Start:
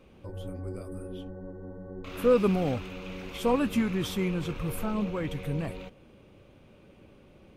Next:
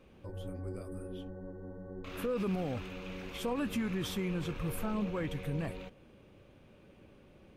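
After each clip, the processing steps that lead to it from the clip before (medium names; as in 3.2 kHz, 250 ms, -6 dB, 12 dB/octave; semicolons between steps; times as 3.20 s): peaking EQ 1.7 kHz +4 dB 0.21 oct; peak limiter -22.5 dBFS, peak gain reduction 10.5 dB; trim -3.5 dB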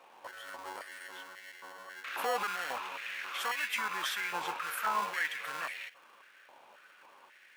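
in parallel at -5.5 dB: sample-and-hold 36×; on the sum: step-sequenced high-pass 3.7 Hz 880–2000 Hz; trim +3.5 dB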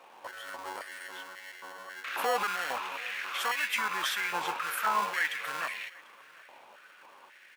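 delay 744 ms -23.5 dB; trim +3.5 dB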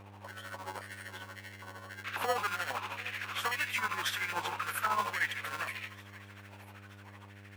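feedback echo behind a high-pass 952 ms, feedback 50%, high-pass 1.9 kHz, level -19 dB; tremolo 13 Hz, depth 65%; mains buzz 100 Hz, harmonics 28, -53 dBFS -7 dB/octave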